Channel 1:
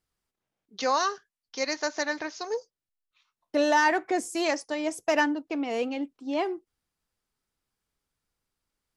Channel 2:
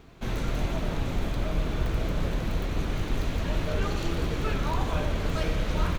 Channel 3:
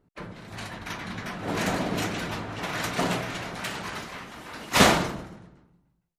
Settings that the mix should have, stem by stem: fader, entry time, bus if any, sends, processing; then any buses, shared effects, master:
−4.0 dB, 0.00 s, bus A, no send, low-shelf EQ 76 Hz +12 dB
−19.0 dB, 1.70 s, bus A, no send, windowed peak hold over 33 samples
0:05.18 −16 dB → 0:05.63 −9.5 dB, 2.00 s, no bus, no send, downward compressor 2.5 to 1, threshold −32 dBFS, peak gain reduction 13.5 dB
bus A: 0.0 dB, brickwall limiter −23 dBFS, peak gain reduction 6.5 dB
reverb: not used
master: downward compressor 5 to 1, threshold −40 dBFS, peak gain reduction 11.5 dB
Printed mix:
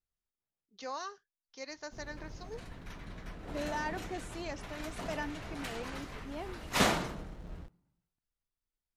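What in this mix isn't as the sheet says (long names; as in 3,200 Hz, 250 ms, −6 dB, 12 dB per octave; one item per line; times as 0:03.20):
stem 1 −4.0 dB → −15.0 dB
stem 3: missing downward compressor 2.5 to 1, threshold −32 dBFS, peak gain reduction 13.5 dB
master: missing downward compressor 5 to 1, threshold −40 dBFS, peak gain reduction 11.5 dB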